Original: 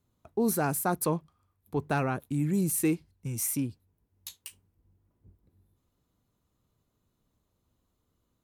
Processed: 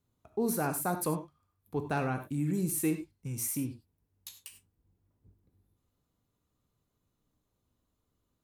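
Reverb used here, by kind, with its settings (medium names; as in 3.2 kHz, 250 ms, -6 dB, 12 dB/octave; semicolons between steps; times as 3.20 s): gated-style reverb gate 120 ms flat, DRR 7 dB; trim -4 dB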